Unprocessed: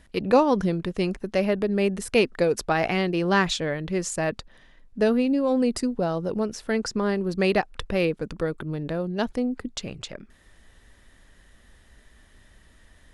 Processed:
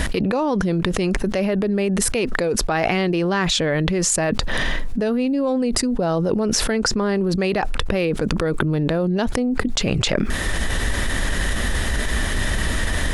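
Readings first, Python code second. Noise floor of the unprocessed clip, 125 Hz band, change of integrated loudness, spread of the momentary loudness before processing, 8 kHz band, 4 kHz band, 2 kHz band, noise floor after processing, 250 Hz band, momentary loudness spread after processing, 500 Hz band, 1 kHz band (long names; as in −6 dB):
−56 dBFS, +8.5 dB, +3.5 dB, 9 LU, +13.0 dB, +9.5 dB, +7.0 dB, −24 dBFS, +4.5 dB, 4 LU, +2.5 dB, +2.5 dB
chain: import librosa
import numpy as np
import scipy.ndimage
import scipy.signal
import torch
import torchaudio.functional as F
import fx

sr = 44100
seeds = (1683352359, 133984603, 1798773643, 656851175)

y = fx.env_flatten(x, sr, amount_pct=100)
y = y * librosa.db_to_amplitude(-6.0)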